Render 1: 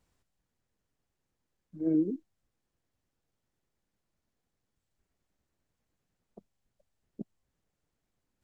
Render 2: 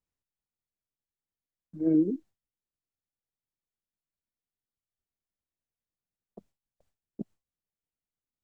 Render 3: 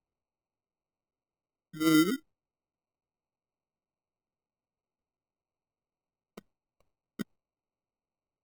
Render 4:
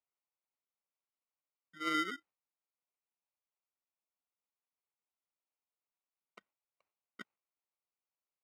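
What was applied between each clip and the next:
gate with hold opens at -58 dBFS; gain +3.5 dB
sample-and-hold 26×
band-pass 1800 Hz, Q 1.1

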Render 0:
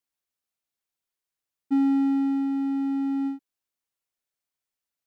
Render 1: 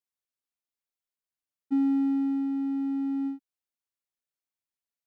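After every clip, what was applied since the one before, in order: dynamic EQ 260 Hz, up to +5 dB, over -33 dBFS; gain -7.5 dB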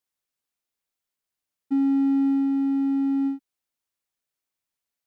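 limiter -22.5 dBFS, peak gain reduction 3.5 dB; gain +6 dB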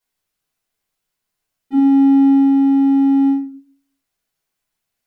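shoebox room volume 240 m³, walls furnished, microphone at 5 m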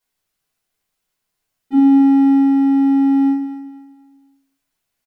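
feedback echo 0.243 s, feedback 34%, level -10.5 dB; gain +1.5 dB

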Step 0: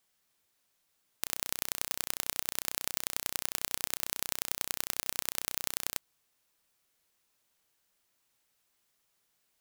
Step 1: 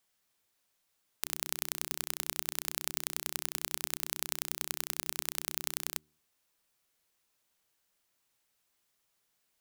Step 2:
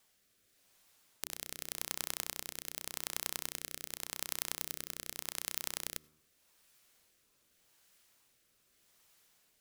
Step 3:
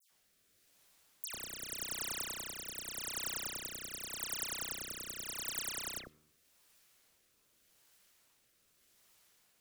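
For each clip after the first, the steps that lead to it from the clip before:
de-hum 76.29 Hz, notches 5; gain -1.5 dB
compressor 6:1, threshold -39 dBFS, peak gain reduction 11.5 dB; on a send at -22.5 dB: reverb RT60 0.60 s, pre-delay 72 ms; on the sum: rotary speaker horn 0.85 Hz; gain +10.5 dB
dispersion lows, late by 0.109 s, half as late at 2800 Hz

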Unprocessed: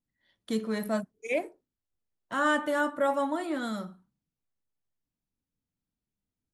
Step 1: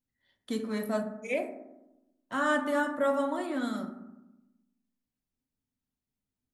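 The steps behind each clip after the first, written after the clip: reverb RT60 0.95 s, pre-delay 4 ms, DRR 5 dB; gain -2.5 dB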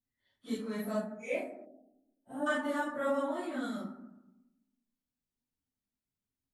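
phase scrambler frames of 0.1 s; spectral gain 1.66–2.47, 890–8100 Hz -20 dB; gain -4 dB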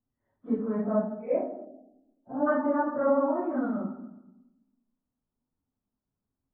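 LPF 1200 Hz 24 dB/oct; gain +8 dB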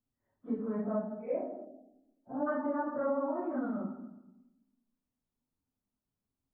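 compressor 2:1, threshold -28 dBFS, peak gain reduction 5.5 dB; gain -3.5 dB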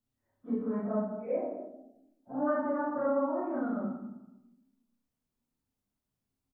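reverse bouncing-ball echo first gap 30 ms, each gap 1.25×, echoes 5

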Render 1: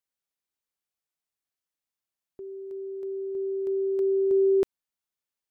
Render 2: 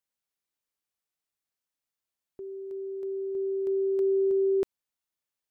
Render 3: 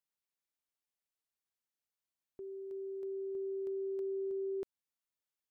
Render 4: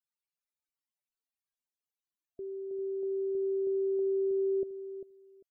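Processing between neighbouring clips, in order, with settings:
limiter -21 dBFS, peak gain reduction 3.5 dB
compressor 4:1, threshold -31 dBFS, peak gain reduction 7 dB; gain -6 dB
loudest bins only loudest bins 32; feedback echo 0.397 s, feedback 18%, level -11 dB; gain +5.5 dB

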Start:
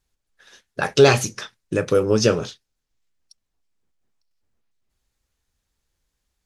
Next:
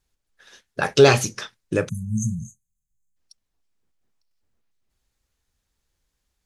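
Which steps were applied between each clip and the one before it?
spectral delete 1.89–3.16, 230–6200 Hz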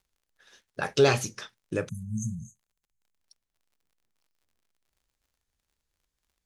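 crackle 57/s -51 dBFS; gain -7.5 dB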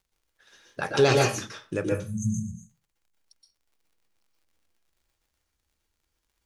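reverb RT60 0.35 s, pre-delay 0.116 s, DRR -0.5 dB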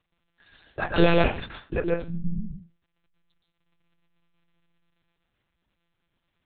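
monotone LPC vocoder at 8 kHz 170 Hz; gain +2 dB

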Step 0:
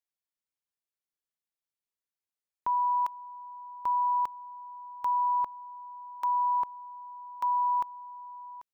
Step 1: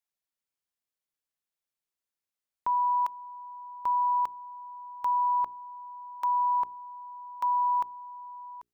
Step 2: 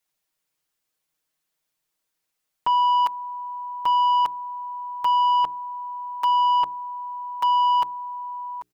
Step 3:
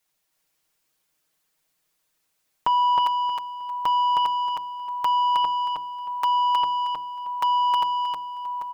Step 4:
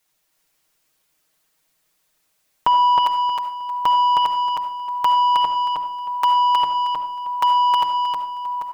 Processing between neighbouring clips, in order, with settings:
notches 60/120/180/240/300/360/420 Hz; gain +1 dB
comb 6.4 ms, depth 97%; soft clip -24.5 dBFS, distortion -16 dB; gain +8.5 dB
compressor 2:1, threshold -28 dBFS, peak gain reduction 5.5 dB; feedback echo 0.314 s, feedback 24%, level -3 dB; gain +4.5 dB
digital reverb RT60 0.43 s, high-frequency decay 0.45×, pre-delay 30 ms, DRR 8.5 dB; gain +5 dB

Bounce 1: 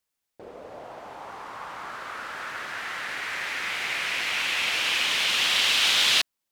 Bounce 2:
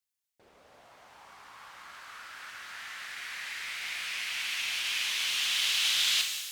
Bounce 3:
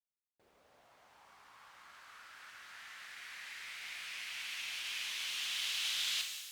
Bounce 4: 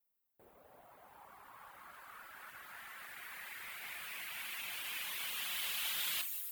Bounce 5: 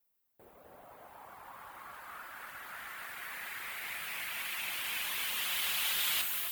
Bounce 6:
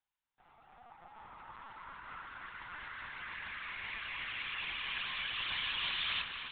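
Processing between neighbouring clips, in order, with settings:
passive tone stack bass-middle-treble 5-5-5; shimmer reverb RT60 1.4 s, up +12 st, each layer -8 dB, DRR 3.5 dB
bit-crush 12-bit; gain -9 dB
reverb removal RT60 0.76 s; EQ curve 830 Hz 0 dB, 5800 Hz -15 dB, 16000 Hz +11 dB; gain +8 dB
echo with dull and thin repeats by turns 0.261 s, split 2000 Hz, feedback 52%, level -3.5 dB; gain +5 dB
Chebyshev high-pass 680 Hz, order 8; LPC vocoder at 8 kHz pitch kept

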